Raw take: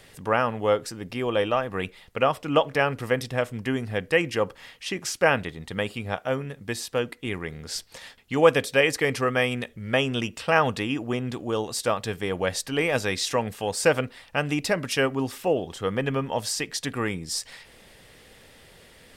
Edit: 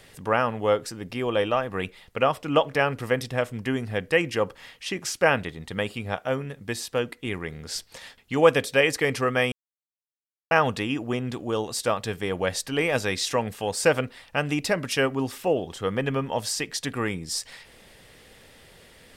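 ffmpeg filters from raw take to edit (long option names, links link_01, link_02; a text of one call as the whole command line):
ffmpeg -i in.wav -filter_complex "[0:a]asplit=3[link_01][link_02][link_03];[link_01]atrim=end=9.52,asetpts=PTS-STARTPTS,afade=type=out:start_time=9.516:duration=0.004:curve=hsin[link_04];[link_02]atrim=start=9.52:end=10.51,asetpts=PTS-STARTPTS,volume=0[link_05];[link_03]atrim=start=10.51,asetpts=PTS-STARTPTS,afade=type=in:duration=0.004:curve=hsin[link_06];[link_04][link_05][link_06]concat=n=3:v=0:a=1" out.wav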